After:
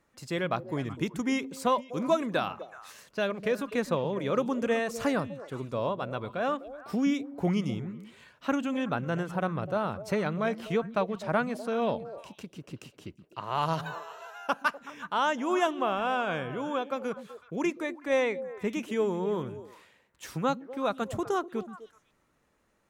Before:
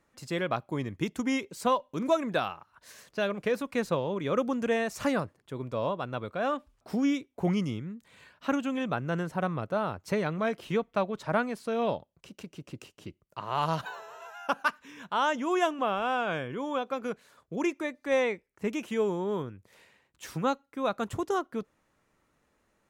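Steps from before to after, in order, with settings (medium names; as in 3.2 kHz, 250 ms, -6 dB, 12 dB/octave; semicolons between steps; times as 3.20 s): repeats whose band climbs or falls 125 ms, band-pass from 180 Hz, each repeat 1.4 oct, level -8 dB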